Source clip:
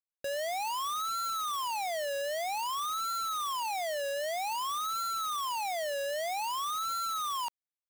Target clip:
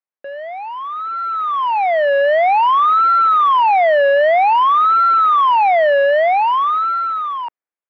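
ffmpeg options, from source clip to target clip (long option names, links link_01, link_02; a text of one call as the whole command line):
ffmpeg -i in.wav -af "lowpass=frequency=2200:width=0.5412,lowpass=frequency=2200:width=1.3066,dynaudnorm=framelen=370:gausssize=9:maxgain=16.5dB,highpass=300,volume=5.5dB" out.wav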